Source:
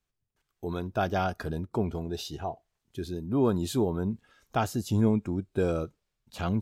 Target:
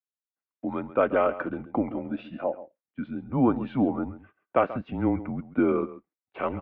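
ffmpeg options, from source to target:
-filter_complex "[0:a]agate=range=0.0562:threshold=0.00316:ratio=16:detection=peak,asplit=2[s0][s1];[s1]adelay=134.1,volume=0.178,highshelf=f=4000:g=-3.02[s2];[s0][s2]amix=inputs=2:normalize=0,highpass=f=350:t=q:w=0.5412,highpass=f=350:t=q:w=1.307,lowpass=f=2500:t=q:w=0.5176,lowpass=f=2500:t=q:w=0.7071,lowpass=f=2500:t=q:w=1.932,afreqshift=-130,volume=2.11"

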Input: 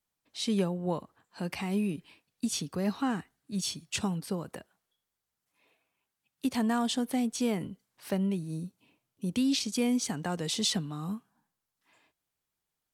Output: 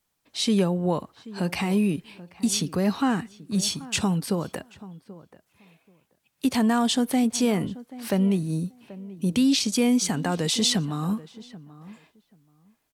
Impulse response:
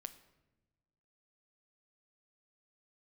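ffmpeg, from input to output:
-filter_complex "[0:a]asplit=2[s0][s1];[s1]alimiter=level_in=1.26:limit=0.0631:level=0:latency=1,volume=0.794,volume=1[s2];[s0][s2]amix=inputs=2:normalize=0,asplit=2[s3][s4];[s4]adelay=783,lowpass=f=1500:p=1,volume=0.133,asplit=2[s5][s6];[s6]adelay=783,lowpass=f=1500:p=1,volume=0.17[s7];[s3][s5][s7]amix=inputs=3:normalize=0,volume=1.41"

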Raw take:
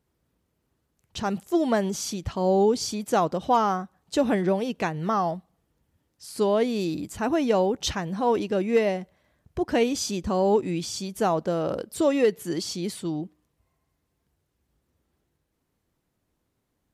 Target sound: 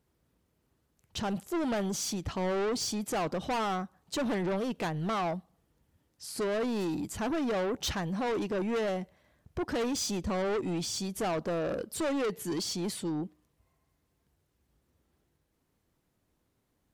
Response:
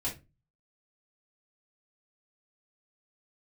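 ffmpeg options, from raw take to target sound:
-af "asoftclip=type=tanh:threshold=0.0398"

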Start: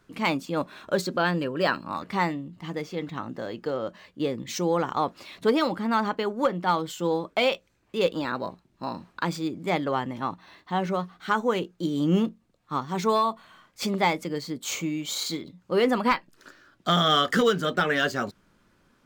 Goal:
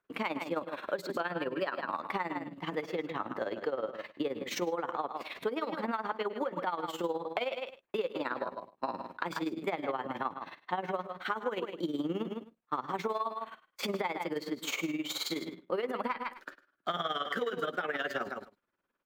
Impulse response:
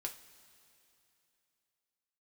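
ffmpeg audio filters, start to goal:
-filter_complex "[0:a]equalizer=f=13000:t=o:w=1.1:g=14,aecho=1:1:140:0.251,alimiter=limit=0.15:level=0:latency=1:release=114,tremolo=f=19:d=0.74,agate=range=0.0891:threshold=0.00316:ratio=16:detection=peak,acrossover=split=300 3100:gain=0.2 1 0.112[s0][s1][s2];[s0][s1][s2]amix=inputs=3:normalize=0,aecho=1:1:103:0.119,acompressor=threshold=0.0126:ratio=6,volume=2.37"

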